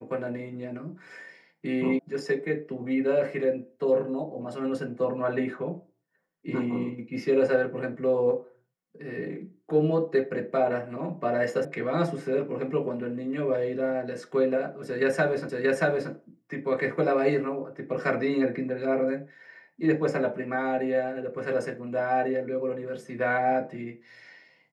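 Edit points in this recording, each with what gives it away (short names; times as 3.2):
1.99 sound cut off
11.65 sound cut off
15.49 repeat of the last 0.63 s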